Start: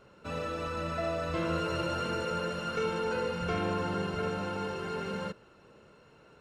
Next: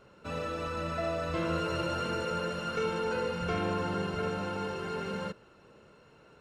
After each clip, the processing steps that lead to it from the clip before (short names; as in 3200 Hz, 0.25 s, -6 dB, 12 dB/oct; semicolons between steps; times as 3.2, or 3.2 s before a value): nothing audible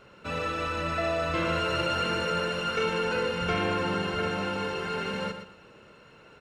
bell 2400 Hz +6 dB 1.7 oct; on a send: feedback echo 0.119 s, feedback 26%, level -9 dB; on the sum: gain +2.5 dB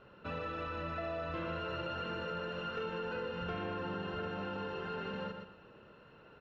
notch 2200 Hz, Q 7.3; compressor 3:1, threshold -33 dBFS, peak gain reduction 7.5 dB; air absorption 240 m; gain -3.5 dB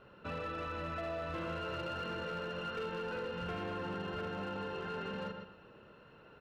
overloaded stage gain 34 dB